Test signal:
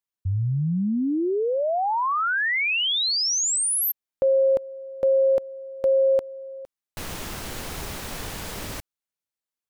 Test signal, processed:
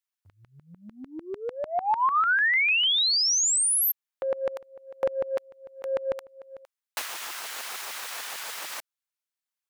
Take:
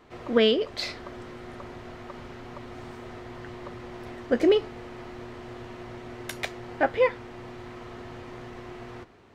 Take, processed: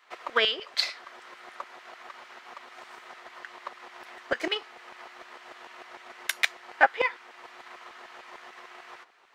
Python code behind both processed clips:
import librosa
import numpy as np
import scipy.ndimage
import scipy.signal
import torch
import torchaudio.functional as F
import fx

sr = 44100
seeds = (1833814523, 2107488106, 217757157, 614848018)

y = fx.filter_lfo_highpass(x, sr, shape='saw_down', hz=6.7, low_hz=730.0, high_hz=1700.0, q=1.0)
y = fx.transient(y, sr, attack_db=8, sustain_db=-1)
y = fx.dynamic_eq(y, sr, hz=600.0, q=2.8, threshold_db=-41.0, ratio=4.0, max_db=-5)